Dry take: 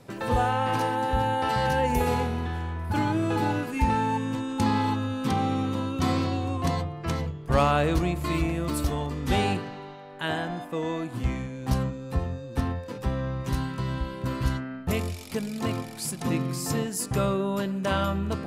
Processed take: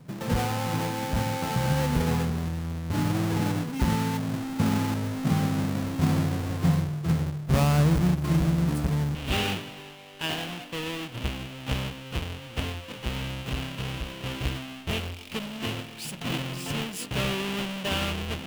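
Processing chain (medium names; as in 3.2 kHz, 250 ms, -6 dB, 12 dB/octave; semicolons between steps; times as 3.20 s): square wave that keeps the level; peaking EQ 160 Hz +13.5 dB 0.71 oct, from 9.15 s 2.9 kHz; trim -9 dB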